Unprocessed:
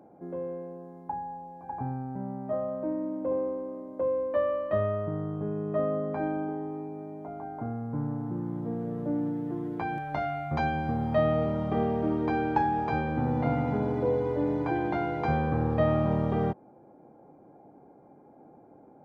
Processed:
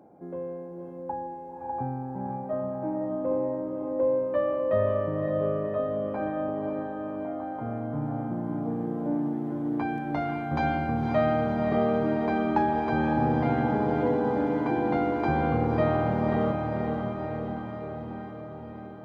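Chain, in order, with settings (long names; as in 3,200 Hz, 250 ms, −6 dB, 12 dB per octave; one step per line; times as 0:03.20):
feedback delay with all-pass diffusion 541 ms, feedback 64%, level −4 dB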